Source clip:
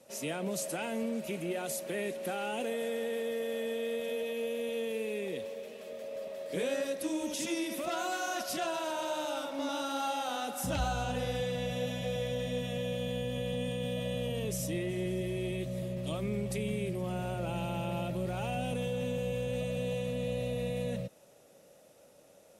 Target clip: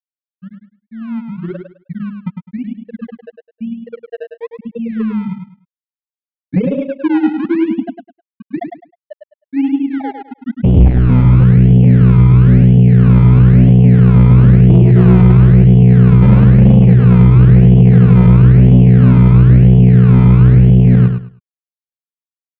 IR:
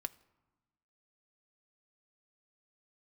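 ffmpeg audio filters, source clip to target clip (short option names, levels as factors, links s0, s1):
-filter_complex "[0:a]asubboost=boost=7:cutoff=190,afftfilt=real='re*gte(hypot(re,im),0.178)':imag='im*gte(hypot(re,im),0.178)':win_size=1024:overlap=0.75,aresample=16000,asoftclip=type=tanh:threshold=0.0501,aresample=44100,dynaudnorm=f=240:g=13:m=5.31,asplit=2[s0][s1];[s1]acrusher=samples=27:mix=1:aa=0.000001:lfo=1:lforange=27:lforate=1,volume=0.631[s2];[s0][s2]amix=inputs=2:normalize=0,lowpass=f=2600:w=0.5412,lowpass=f=2600:w=1.3066,aecho=1:1:104|208|312:0.501|0.115|0.0265,volume=1.26"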